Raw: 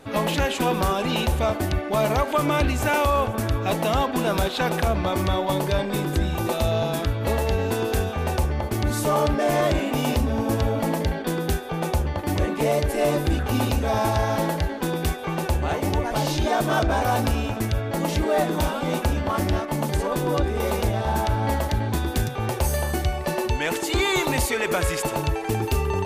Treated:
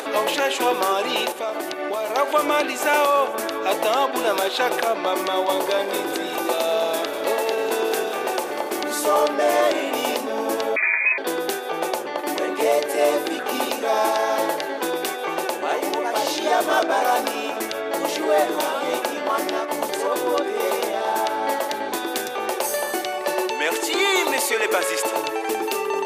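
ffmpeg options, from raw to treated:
-filter_complex "[0:a]asettb=1/sr,asplit=3[a][b][c];[a]atrim=end=1.314[d];[b]atrim=start=1.31:end=2.16,asetpts=PTS-STARTPTS,afade=t=in:d=0.004:c=qsin,afade=t=out:st=0.846:d=0.004:c=qsin,acompressor=threshold=-25dB:ratio=6:attack=3.2:release=140:knee=1:detection=peak[e];[c]atrim=start=2.156[f];[d][e]acrossfade=d=0.004:c1=hsin:c2=qsin[g];[g][f]acrossfade=d=0.004:c1=qsin:c2=hsin,asettb=1/sr,asplit=3[h][i][j];[h]atrim=end=5.164[k];[i]atrim=start=5.16:end=8.94,asetpts=PTS-STARTPTS,afade=t=in:d=0.004:c=qsin,afade=t=out:st=3.776:d=0.004:c=qsin,asplit=8[l][m][n][o][p][q][r][s];[m]adelay=195,afreqshift=-36,volume=-12dB[t];[n]adelay=390,afreqshift=-72,volume=-16.4dB[u];[o]adelay=585,afreqshift=-108,volume=-20.9dB[v];[p]adelay=780,afreqshift=-144,volume=-25.3dB[w];[q]adelay=975,afreqshift=-180,volume=-29.7dB[x];[r]adelay=1170,afreqshift=-216,volume=-34.2dB[y];[s]adelay=1365,afreqshift=-252,volume=-38.6dB[z];[l][t][u][v][w][x][y][z]amix=inputs=8:normalize=0,atrim=end_sample=166698[aa];[j]atrim=start=8.936[ab];[k][aa]acrossfade=d=0.004:c1=hsin:c2=qsin[ac];[ac][ab]acrossfade=d=0.004:c1=qsin:c2=hsin,asettb=1/sr,asplit=3[ad][ae][af];[ad]atrim=end=10.764[ag];[ae]atrim=start=10.76:end=11.18,asetpts=PTS-STARTPTS,afade=t=in:d=0.004:c=qsin,afade=t=out:st=0.416:d=0.004:c=qsin,lowpass=f=2.2k:t=q:w=0.5098,lowpass=f=2.2k:t=q:w=0.6013,lowpass=f=2.2k:t=q:w=0.9,lowpass=f=2.2k:t=q:w=2.563,afreqshift=-2600[ah];[af]atrim=start=11.176[ai];[ag][ah]acrossfade=d=0.004:c1=hsin:c2=qsin[aj];[aj][ai]acrossfade=d=0.004:c1=qsin:c2=hsin,highpass=f=340:w=0.5412,highpass=f=340:w=1.3066,acompressor=mode=upward:threshold=-25dB:ratio=2.5,volume=3.5dB"

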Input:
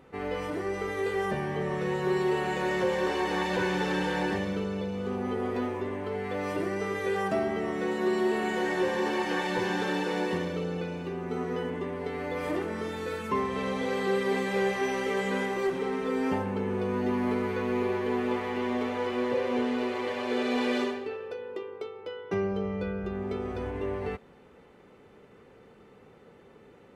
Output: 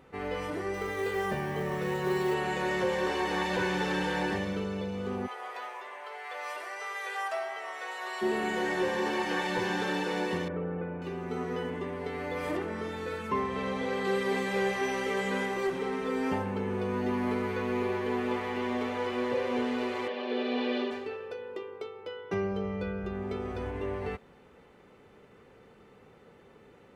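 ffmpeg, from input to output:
-filter_complex "[0:a]asettb=1/sr,asplit=3[a][b][c];[a]atrim=end=0.744[d];[b]atrim=start=0.74:end=2.34,asetpts=PTS-STARTPTS,afade=t=in:d=0.004:c=qsin,afade=t=out:st=1.596:d=0.004:c=qsin,acrusher=bits=7:mode=log:mix=0:aa=0.000001[e];[c]atrim=start=2.336[f];[d][e]acrossfade=d=0.004:c1=hsin:c2=qsin[g];[g][f]acrossfade=d=0.004:c1=qsin:c2=hsin,asplit=3[h][i][j];[h]afade=t=out:st=5.26:d=0.02[k];[i]highpass=f=670:w=0.5412,highpass=f=670:w=1.3066,afade=t=in:st=5.26:d=0.02,afade=t=out:st=8.21:d=0.02[l];[j]afade=t=in:st=8.21:d=0.02[m];[k][l][m]amix=inputs=3:normalize=0,asettb=1/sr,asplit=3[n][o][p];[n]atrim=end=10.484[q];[o]atrim=start=10.48:end=11.02,asetpts=PTS-STARTPTS,afade=t=in:d=0.004:c=qsin,afade=t=out:st=0.536:d=0.004:c=qsin,lowpass=f=1.8k:w=0.5412,lowpass=f=1.8k:w=1.3066[r];[p]atrim=start=11.016[s];[q][r]acrossfade=d=0.004:c1=hsin:c2=qsin[t];[t][s]acrossfade=d=0.004:c1=qsin:c2=hsin,asettb=1/sr,asplit=3[u][v][w];[u]atrim=end=12.574[x];[v]atrim=start=12.57:end=14.05,asetpts=PTS-STARTPTS,afade=t=in:d=0.004:c=qsin,afade=t=out:st=1.476:d=0.004:c=qsin,highshelf=f=4.4k:g=-6.5[y];[w]atrim=start=14.046[z];[x][y]acrossfade=d=0.004:c1=hsin:c2=qsin[aa];[aa][z]acrossfade=d=0.004:c1=qsin:c2=hsin,asplit=3[ab][ac][ad];[ab]afade=t=out:st=20.07:d=0.02[ae];[ac]highpass=f=190:w=0.5412,highpass=f=190:w=1.3066,equalizer=f=950:t=q:w=4:g=-5,equalizer=f=1.4k:t=q:w=4:g=-7,equalizer=f=2.1k:t=q:w=4:g=-6,lowpass=f=4.1k:w=0.5412,lowpass=f=4.1k:w=1.3066,afade=t=in:st=20.07:d=0.02,afade=t=out:st=20.9:d=0.02[af];[ad]afade=t=in:st=20.9:d=0.02[ag];[ae][af][ag]amix=inputs=3:normalize=0,equalizer=f=310:t=o:w=2.3:g=-2.5"

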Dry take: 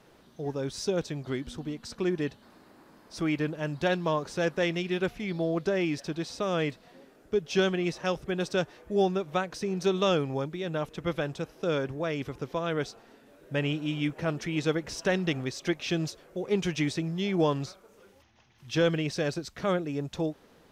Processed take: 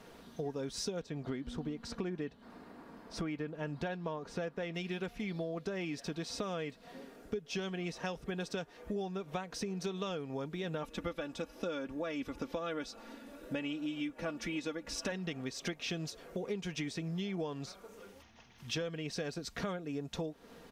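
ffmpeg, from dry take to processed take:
-filter_complex "[0:a]asettb=1/sr,asplit=3[a][b][c];[a]atrim=end=1.014[d];[b]atrim=start=1.01:end=4.75,asetpts=PTS-STARTPTS,afade=t=in:d=0.004:c=qsin,afade=t=out:st=3.736:d=0.004:c=qsin,highshelf=f=3.6k:g=-10.5[e];[c]atrim=start=4.746[f];[d][e]acrossfade=d=0.004:c1=hsin:c2=qsin[g];[g][f]acrossfade=d=0.004:c1=qsin:c2=hsin,asettb=1/sr,asplit=3[h][i][j];[h]atrim=end=10.834[k];[i]atrim=start=10.83:end=15.12,asetpts=PTS-STARTPTS,afade=t=in:d=0.004:c=qsin,afade=t=out:st=4.286:d=0.004:c=qsin,aecho=1:1:3.5:0.65,atrim=end_sample=189189[l];[j]atrim=start=15.116[m];[k][l]acrossfade=d=0.004:c1=hsin:c2=qsin[n];[n][m]acrossfade=d=0.004:c1=qsin:c2=hsin,aecho=1:1:4.3:0.37,acompressor=threshold=-38dB:ratio=10,volume=3dB"

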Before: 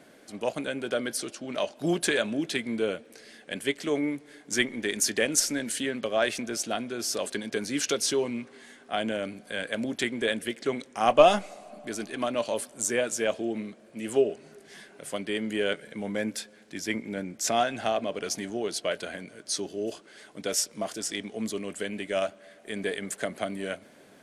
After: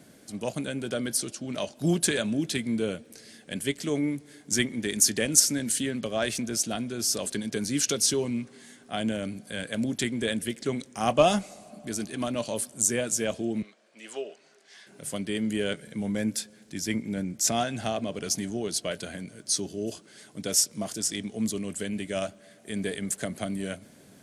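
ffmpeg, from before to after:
-filter_complex "[0:a]asettb=1/sr,asplit=3[a][b][c];[a]atrim=end=13.624[d];[b]atrim=start=13.62:end=14.87,asetpts=PTS-STARTPTS,afade=t=in:d=0.004:c=qsin,afade=t=out:st=1.246:d=0.004:c=qsin,highpass=750,lowpass=5k[e];[c]atrim=start=14.866[f];[d][e]acrossfade=d=0.004:c1=hsin:c2=qsin[g];[g][f]acrossfade=d=0.004:c1=qsin:c2=hsin,highpass=41,bass=f=250:g=14,treble=f=4k:g=10,volume=-4dB"

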